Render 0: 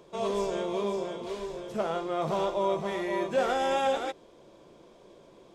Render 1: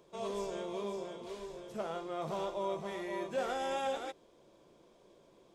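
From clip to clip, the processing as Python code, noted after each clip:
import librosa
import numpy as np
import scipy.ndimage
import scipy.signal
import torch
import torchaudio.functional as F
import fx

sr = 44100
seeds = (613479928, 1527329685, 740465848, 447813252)

y = fx.high_shelf(x, sr, hz=6600.0, db=5.0)
y = y * librosa.db_to_amplitude(-8.5)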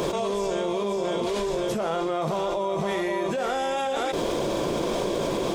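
y = fx.env_flatten(x, sr, amount_pct=100)
y = y * librosa.db_to_amplitude(4.0)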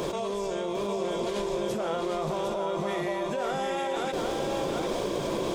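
y = x + 10.0 ** (-5.0 / 20.0) * np.pad(x, (int(753 * sr / 1000.0), 0))[:len(x)]
y = y * librosa.db_to_amplitude(-4.5)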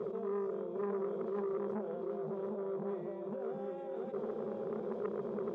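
y = fx.double_bandpass(x, sr, hz=300.0, octaves=0.91)
y = fx.transformer_sat(y, sr, knee_hz=640.0)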